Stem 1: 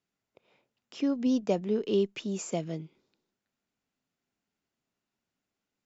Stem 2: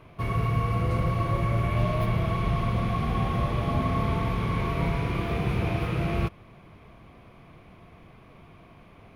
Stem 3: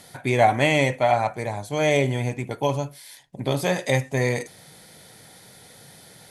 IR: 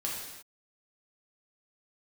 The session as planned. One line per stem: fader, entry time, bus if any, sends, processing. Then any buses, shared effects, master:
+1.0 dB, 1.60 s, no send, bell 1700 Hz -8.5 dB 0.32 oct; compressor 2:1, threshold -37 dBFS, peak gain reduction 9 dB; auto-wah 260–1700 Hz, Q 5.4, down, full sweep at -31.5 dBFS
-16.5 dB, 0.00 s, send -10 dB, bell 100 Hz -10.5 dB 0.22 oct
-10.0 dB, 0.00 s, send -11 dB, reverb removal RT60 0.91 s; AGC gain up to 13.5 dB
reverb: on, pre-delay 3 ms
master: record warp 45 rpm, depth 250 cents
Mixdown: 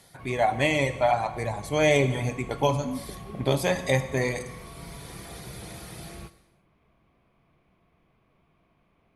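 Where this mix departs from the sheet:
stem 2: send -10 dB -> -16 dB; master: missing record warp 45 rpm, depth 250 cents

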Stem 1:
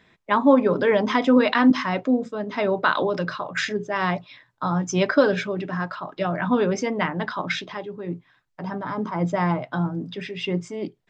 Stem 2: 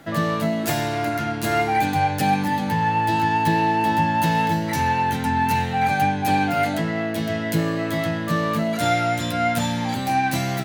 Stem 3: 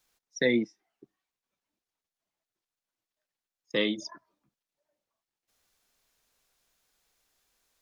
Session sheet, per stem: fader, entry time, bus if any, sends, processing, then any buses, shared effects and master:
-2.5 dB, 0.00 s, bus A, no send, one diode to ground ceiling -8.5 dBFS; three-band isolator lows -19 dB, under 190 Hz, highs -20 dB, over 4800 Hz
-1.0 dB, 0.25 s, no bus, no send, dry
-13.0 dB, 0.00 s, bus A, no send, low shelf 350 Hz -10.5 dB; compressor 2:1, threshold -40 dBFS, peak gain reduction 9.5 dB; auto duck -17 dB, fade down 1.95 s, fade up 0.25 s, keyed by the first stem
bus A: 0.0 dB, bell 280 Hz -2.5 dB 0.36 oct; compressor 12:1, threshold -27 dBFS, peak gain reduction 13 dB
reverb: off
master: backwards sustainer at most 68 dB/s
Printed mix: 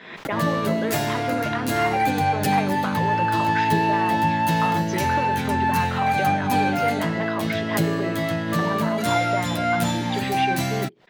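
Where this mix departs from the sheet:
stem 1 -2.5 dB -> +8.0 dB; stem 3 -13.0 dB -> -19.5 dB

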